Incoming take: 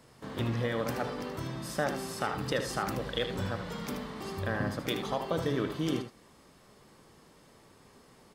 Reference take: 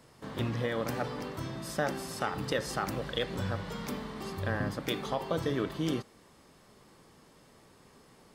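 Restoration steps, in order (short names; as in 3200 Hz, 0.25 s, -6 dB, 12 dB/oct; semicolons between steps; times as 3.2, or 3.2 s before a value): inverse comb 77 ms -9 dB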